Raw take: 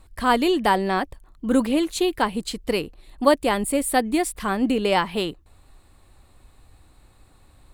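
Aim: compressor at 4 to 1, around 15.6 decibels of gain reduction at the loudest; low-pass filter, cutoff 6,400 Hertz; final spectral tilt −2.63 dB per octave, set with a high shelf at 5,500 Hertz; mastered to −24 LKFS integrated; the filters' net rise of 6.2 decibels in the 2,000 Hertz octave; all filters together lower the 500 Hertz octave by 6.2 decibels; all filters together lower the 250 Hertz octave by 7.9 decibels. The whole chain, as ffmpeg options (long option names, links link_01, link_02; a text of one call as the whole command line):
ffmpeg -i in.wav -af "lowpass=6400,equalizer=frequency=250:width_type=o:gain=-8,equalizer=frequency=500:width_type=o:gain=-6,equalizer=frequency=2000:width_type=o:gain=8,highshelf=frequency=5500:gain=3,acompressor=threshold=-33dB:ratio=4,volume=11.5dB" out.wav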